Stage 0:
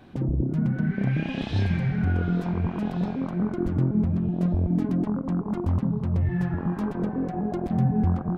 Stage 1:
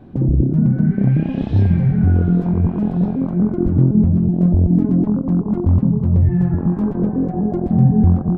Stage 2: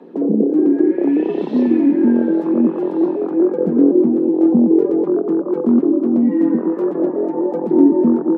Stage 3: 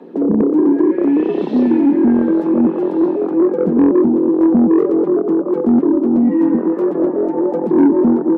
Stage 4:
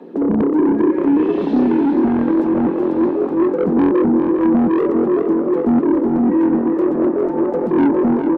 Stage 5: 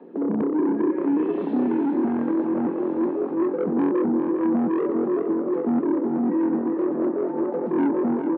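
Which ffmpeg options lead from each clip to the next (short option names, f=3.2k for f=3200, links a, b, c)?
-af "tiltshelf=f=970:g=9.5,volume=1dB"
-af "afreqshift=150,aphaser=in_gain=1:out_gain=1:delay=4:decay=0.22:speed=0.77:type=triangular"
-af "acontrast=65,volume=-3.5dB"
-af "asoftclip=type=tanh:threshold=-10dB,aecho=1:1:405|810|1215|1620|2025:0.398|0.183|0.0842|0.0388|0.0178"
-af "highpass=150,lowpass=2.5k,volume=-7dB"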